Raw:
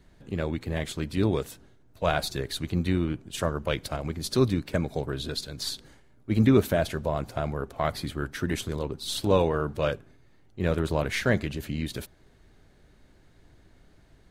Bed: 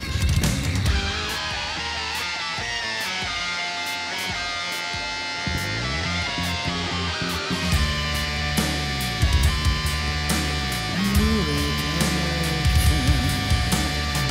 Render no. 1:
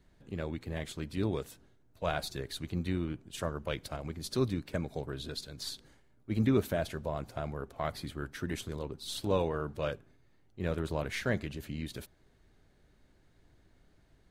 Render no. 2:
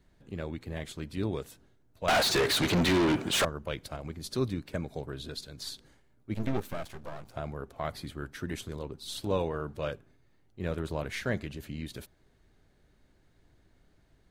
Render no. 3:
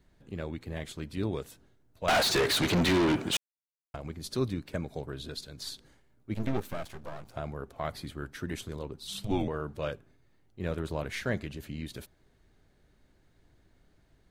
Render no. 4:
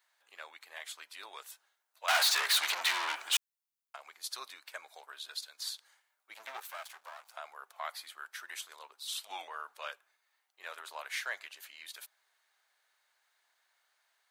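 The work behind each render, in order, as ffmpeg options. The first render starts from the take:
ffmpeg -i in.wav -af "volume=-7.5dB" out.wav
ffmpeg -i in.wav -filter_complex "[0:a]asettb=1/sr,asplit=3[link_01][link_02][link_03];[link_01]atrim=end=2.084[link_04];[link_02]atrim=start=2.08:end=3.45,asetpts=PTS-STARTPTS,afade=type=in:duration=0.004:curve=qsin,afade=type=out:start_time=1.366:duration=0.004:curve=qsin,asplit=2[link_05][link_06];[link_06]highpass=frequency=720:poles=1,volume=38dB,asoftclip=type=tanh:threshold=-17dB[link_07];[link_05][link_07]amix=inputs=2:normalize=0,lowpass=frequency=4500:poles=1,volume=-6dB[link_08];[link_03]atrim=start=3.446[link_09];[link_04][link_08]acrossfade=duration=0.004:curve1=hsin:curve2=qsin[link_10];[link_10][link_09]acrossfade=duration=0.004:curve1=qsin:curve2=hsin,asettb=1/sr,asplit=3[link_11][link_12][link_13];[link_11]atrim=end=6.344[link_14];[link_12]atrim=start=6.34:end=7.34,asetpts=PTS-STARTPTS,afade=type=in:duration=0.004:curve=qsin,afade=type=out:start_time=0.996:duration=0.004:curve=qsin,aeval=exprs='max(val(0),0)':channel_layout=same[link_15];[link_13]atrim=start=7.336[link_16];[link_14][link_15]acrossfade=duration=0.004:curve1=hsin:curve2=qsin[link_17];[link_17][link_16]acrossfade=duration=0.004:curve1=qsin:curve2=hsin" out.wav
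ffmpeg -i in.wav -filter_complex "[0:a]asettb=1/sr,asplit=3[link_01][link_02][link_03];[link_01]atrim=end=9.074[link_04];[link_02]atrim=start=9.07:end=9.48,asetpts=PTS-STARTPTS,afade=type=in:duration=0.004:curve=qsin,afade=type=out:start_time=0.406:duration=0.004:curve=qsin,afreqshift=-200[link_05];[link_03]atrim=start=9.476[link_06];[link_04][link_05]acrossfade=duration=0.004:curve1=hsin:curve2=qsin[link_07];[link_07][link_06]acrossfade=duration=0.004:curve1=qsin:curve2=hsin,asplit=3[link_08][link_09][link_10];[link_08]atrim=end=3.37,asetpts=PTS-STARTPTS,afade=type=out:start_time=3.366:duration=0.004:curve=hsin[link_11];[link_09]atrim=start=3.37:end=3.94,asetpts=PTS-STARTPTS,volume=0[link_12];[link_10]atrim=start=3.94,asetpts=PTS-STARTPTS,afade=type=in:duration=0.004:curve=hsin[link_13];[link_11][link_12][link_13]concat=n=3:v=0:a=1" out.wav
ffmpeg -i in.wav -af "highpass=frequency=870:width=0.5412,highpass=frequency=870:width=1.3066,highshelf=frequency=10000:gain=6" out.wav

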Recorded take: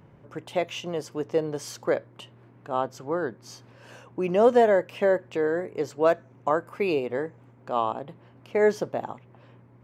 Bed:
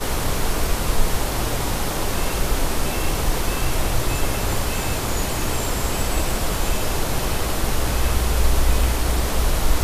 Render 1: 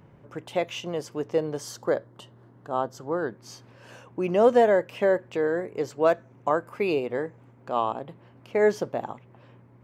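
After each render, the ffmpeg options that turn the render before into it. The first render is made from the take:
ffmpeg -i in.wav -filter_complex "[0:a]asettb=1/sr,asplit=3[link_01][link_02][link_03];[link_01]atrim=end=1.604[link_04];[link_02]atrim=start=1.6:end=3.19,asetpts=PTS-STARTPTS,afade=type=in:duration=0.004:curve=qsin,afade=type=out:start_time=1.586:duration=0.004:curve=qsin,equalizer=frequency=2400:width=3.7:gain=-13.5[link_05];[link_03]atrim=start=3.186[link_06];[link_04][link_05]acrossfade=duration=0.004:curve1=hsin:curve2=qsin[link_07];[link_07][link_06]acrossfade=duration=0.004:curve1=qsin:curve2=hsin" out.wav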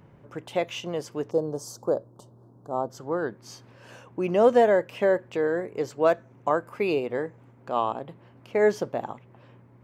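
ffmpeg -i in.wav -filter_complex "[0:a]asettb=1/sr,asplit=3[link_01][link_02][link_03];[link_01]atrim=end=1.314[link_04];[link_02]atrim=start=1.31:end=2.9,asetpts=PTS-STARTPTS,afade=type=in:duration=0.004:curve=qsin,afade=type=out:start_time=1.586:duration=0.004:curve=qsin,asuperstop=centerf=2300:order=4:qfactor=0.57[link_05];[link_03]atrim=start=2.896[link_06];[link_04][link_05]acrossfade=duration=0.004:curve1=hsin:curve2=qsin[link_07];[link_07][link_06]acrossfade=duration=0.004:curve1=qsin:curve2=hsin" out.wav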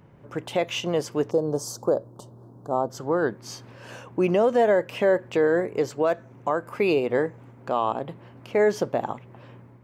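ffmpeg -i in.wav -af "dynaudnorm=framelen=170:gausssize=3:maxgain=6dB,alimiter=limit=-12.5dB:level=0:latency=1:release=150" out.wav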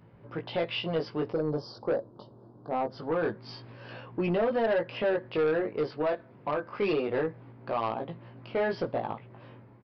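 ffmpeg -i in.wav -af "flanger=delay=17.5:depth=2.6:speed=0.24,aresample=11025,asoftclip=type=tanh:threshold=-21.5dB,aresample=44100" out.wav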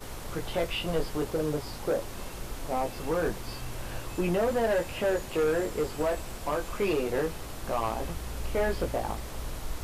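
ffmpeg -i in.wav -i bed.wav -filter_complex "[1:a]volume=-17dB[link_01];[0:a][link_01]amix=inputs=2:normalize=0" out.wav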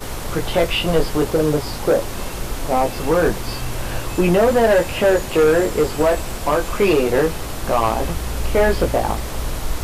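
ffmpeg -i in.wav -af "volume=12dB" out.wav

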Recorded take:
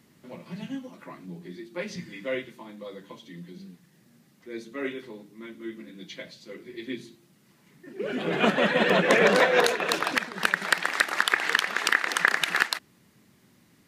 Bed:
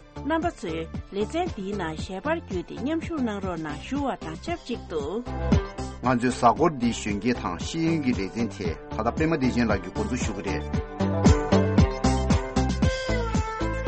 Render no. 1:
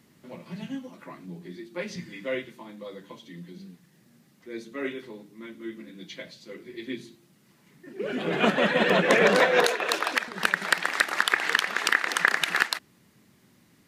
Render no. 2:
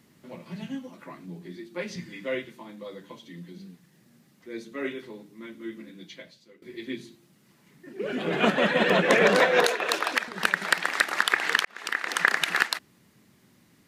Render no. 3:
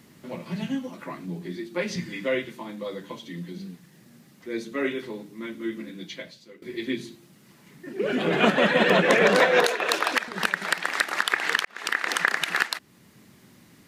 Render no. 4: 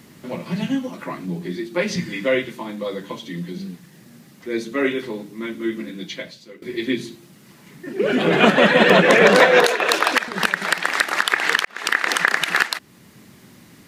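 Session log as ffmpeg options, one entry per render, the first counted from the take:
ffmpeg -i in.wav -filter_complex "[0:a]asettb=1/sr,asplit=3[link_01][link_02][link_03];[link_01]atrim=end=9.654[link_04];[link_02]atrim=start=9.65:end=10.28,asetpts=PTS-STARTPTS,afade=type=in:duration=0.004:curve=qsin,afade=type=out:start_time=0.626:duration=0.004:curve=qsin,highpass=340[link_05];[link_03]atrim=start=10.276[link_06];[link_04][link_05]acrossfade=duration=0.004:curve1=hsin:curve2=qsin[link_07];[link_07][link_06]acrossfade=duration=0.004:curve1=qsin:curve2=hsin" out.wav
ffmpeg -i in.wav -filter_complex "[0:a]asplit=3[link_01][link_02][link_03];[link_01]atrim=end=6.62,asetpts=PTS-STARTPTS,afade=type=out:start_time=5.83:duration=0.79:silence=0.11885[link_04];[link_02]atrim=start=6.62:end=11.65,asetpts=PTS-STARTPTS,afade=type=in:duration=0.004:curve=hsin:silence=0.11885,afade=type=out:start_time=5.026:duration=0.004:curve=hsin[link_05];[link_03]atrim=start=11.65,asetpts=PTS-STARTPTS,afade=type=in:duration=0.58[link_06];[link_04][link_05][link_06]concat=n=3:v=0:a=1" out.wav
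ffmpeg -i in.wav -filter_complex "[0:a]asplit=2[link_01][link_02];[link_02]acompressor=threshold=-30dB:ratio=6,volume=1dB[link_03];[link_01][link_03]amix=inputs=2:normalize=0,alimiter=limit=-5.5dB:level=0:latency=1:release=496" out.wav
ffmpeg -i in.wav -af "volume=6.5dB,alimiter=limit=-1dB:level=0:latency=1" out.wav

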